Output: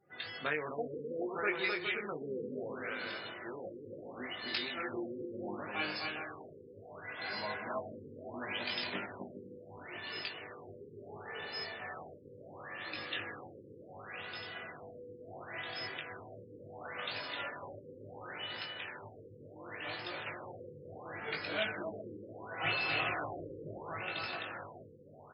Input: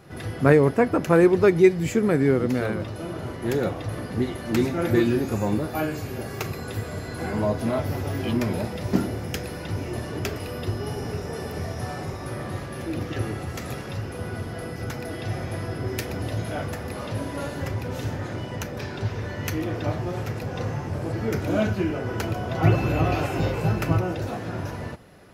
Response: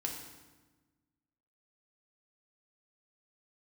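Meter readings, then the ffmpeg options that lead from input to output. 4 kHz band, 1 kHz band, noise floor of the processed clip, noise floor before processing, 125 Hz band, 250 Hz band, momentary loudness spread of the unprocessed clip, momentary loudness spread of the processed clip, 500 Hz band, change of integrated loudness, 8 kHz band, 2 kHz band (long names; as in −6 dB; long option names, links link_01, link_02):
−1.5 dB, −11.0 dB, −55 dBFS, −35 dBFS, −27.5 dB, −21.5 dB, 13 LU, 16 LU, −17.5 dB, −14.0 dB, below −40 dB, −5.0 dB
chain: -filter_complex "[0:a]aresample=22050,aresample=44100,afftdn=noise_reduction=28:noise_floor=-46,aderivative,alimiter=level_in=4.5dB:limit=-24dB:level=0:latency=1:release=484,volume=-4.5dB,bandreject=frequency=6800:width=6.8,asplit=2[link_01][link_02];[link_02]adelay=20,volume=-4dB[link_03];[link_01][link_03]amix=inputs=2:normalize=0,aecho=1:1:260|416|509.6|565.8|599.5:0.631|0.398|0.251|0.158|0.1,areverse,acompressor=mode=upward:threshold=-52dB:ratio=2.5,areverse,highshelf=frequency=2000:gain=8.5,afftfilt=real='re*lt(b*sr/1024,520*pow(5300/520,0.5+0.5*sin(2*PI*0.71*pts/sr)))':imag='im*lt(b*sr/1024,520*pow(5300/520,0.5+0.5*sin(2*PI*0.71*pts/sr)))':win_size=1024:overlap=0.75,volume=4.5dB"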